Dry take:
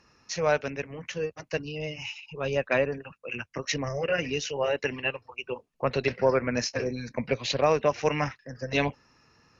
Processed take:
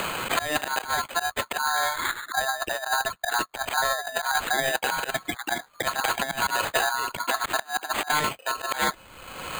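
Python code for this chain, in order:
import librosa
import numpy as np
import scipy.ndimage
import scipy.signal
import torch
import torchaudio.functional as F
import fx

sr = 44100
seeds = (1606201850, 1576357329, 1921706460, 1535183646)

y = fx.graphic_eq_10(x, sr, hz=(125, 500, 1000, 2000), db=(5, 11, -8, -4), at=(2.11, 4.34))
y = fx.over_compress(y, sr, threshold_db=-28.0, ratio=-0.5)
y = fx.spec_erase(y, sr, start_s=7.24, length_s=0.88, low_hz=570.0, high_hz=1400.0)
y = fx.auto_swell(y, sr, attack_ms=147.0)
y = fx.high_shelf_res(y, sr, hz=2800.0, db=-8.0, q=1.5)
y = y * np.sin(2.0 * np.pi * 1200.0 * np.arange(len(y)) / sr)
y = np.repeat(y[::8], 8)[:len(y)]
y = fx.band_squash(y, sr, depth_pct=100)
y = y * 10.0 ** (9.0 / 20.0)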